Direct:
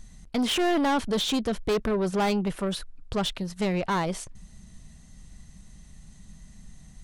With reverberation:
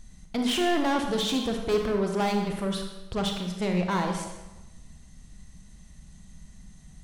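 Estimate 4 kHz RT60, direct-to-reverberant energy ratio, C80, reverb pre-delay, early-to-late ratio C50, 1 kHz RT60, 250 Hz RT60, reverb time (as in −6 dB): 0.85 s, 3.0 dB, 7.0 dB, 30 ms, 4.5 dB, 1.1 s, 1.0 s, 1.1 s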